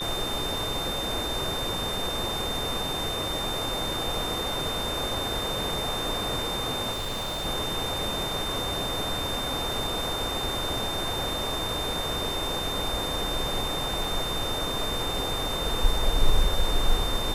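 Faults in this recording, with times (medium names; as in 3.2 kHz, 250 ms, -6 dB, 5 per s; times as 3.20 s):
whine 3.6 kHz -31 dBFS
6.91–7.46 s: clipped -27.5 dBFS
14.04 s: dropout 3.3 ms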